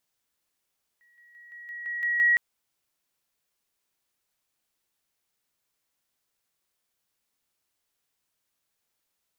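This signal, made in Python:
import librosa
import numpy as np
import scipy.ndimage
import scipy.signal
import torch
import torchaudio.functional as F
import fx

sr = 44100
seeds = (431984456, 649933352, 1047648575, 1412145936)

y = fx.level_ladder(sr, hz=1910.0, from_db=-59.5, step_db=6.0, steps=8, dwell_s=0.17, gap_s=0.0)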